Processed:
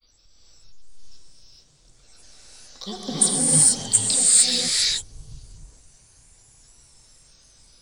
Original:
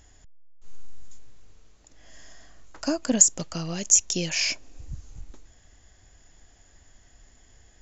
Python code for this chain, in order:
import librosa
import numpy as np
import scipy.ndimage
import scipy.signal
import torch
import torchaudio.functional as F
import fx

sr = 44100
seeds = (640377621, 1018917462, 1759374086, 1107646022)

y = fx.high_shelf_res(x, sr, hz=3500.0, db=8.0, q=1.5)
y = fx.granulator(y, sr, seeds[0], grain_ms=100.0, per_s=20.0, spray_ms=24.0, spread_st=7)
y = fx.rev_gated(y, sr, seeds[1], gate_ms=480, shape='rising', drr_db=-7.5)
y = F.gain(torch.from_numpy(y), -7.5).numpy()